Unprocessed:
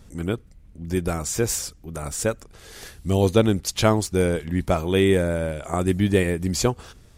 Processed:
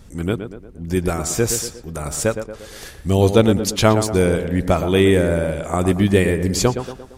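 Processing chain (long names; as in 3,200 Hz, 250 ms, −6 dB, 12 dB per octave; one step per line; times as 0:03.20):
tape delay 116 ms, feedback 54%, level −7.5 dB, low-pass 1,800 Hz
level +4 dB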